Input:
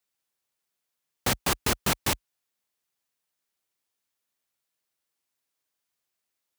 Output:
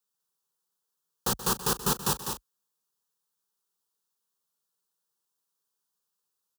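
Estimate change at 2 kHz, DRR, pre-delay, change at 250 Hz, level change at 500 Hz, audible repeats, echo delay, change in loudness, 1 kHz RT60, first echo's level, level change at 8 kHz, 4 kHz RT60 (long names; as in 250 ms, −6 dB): −7.5 dB, no reverb audible, no reverb audible, −1.5 dB, −1.5 dB, 3, 129 ms, −1.0 dB, no reverb audible, −14.0 dB, +0.5 dB, no reverb audible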